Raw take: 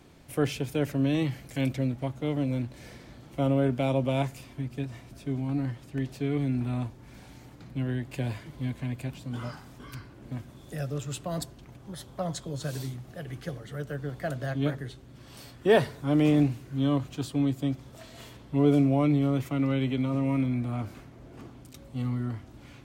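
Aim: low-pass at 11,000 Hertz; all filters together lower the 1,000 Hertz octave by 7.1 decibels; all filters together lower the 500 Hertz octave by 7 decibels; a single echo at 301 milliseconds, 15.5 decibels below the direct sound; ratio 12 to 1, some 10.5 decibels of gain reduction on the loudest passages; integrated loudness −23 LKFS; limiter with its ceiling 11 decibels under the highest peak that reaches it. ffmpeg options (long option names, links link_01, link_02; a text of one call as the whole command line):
ffmpeg -i in.wav -af "lowpass=11000,equalizer=frequency=500:width_type=o:gain=-7,equalizer=frequency=1000:width_type=o:gain=-7,acompressor=threshold=-31dB:ratio=12,alimiter=level_in=9.5dB:limit=-24dB:level=0:latency=1,volume=-9.5dB,aecho=1:1:301:0.168,volume=19.5dB" out.wav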